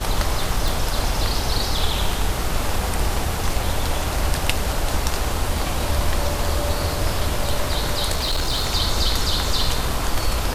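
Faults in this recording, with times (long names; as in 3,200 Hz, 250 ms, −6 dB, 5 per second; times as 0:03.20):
0:00.68: click
0:08.11–0:08.71: clipping −17 dBFS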